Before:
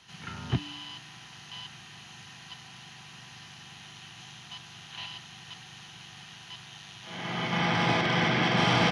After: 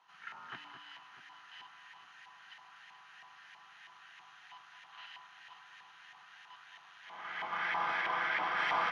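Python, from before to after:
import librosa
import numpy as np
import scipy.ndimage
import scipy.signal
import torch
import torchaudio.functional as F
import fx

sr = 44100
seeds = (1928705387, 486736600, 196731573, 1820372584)

y = fx.high_shelf(x, sr, hz=9300.0, db=11.5)
y = fx.filter_lfo_bandpass(y, sr, shape='saw_up', hz=3.1, low_hz=920.0, high_hz=1900.0, q=3.1)
y = fx.low_shelf(y, sr, hz=110.0, db=-11.5)
y = fx.echo_alternate(y, sr, ms=214, hz=1900.0, feedback_pct=73, wet_db=-8)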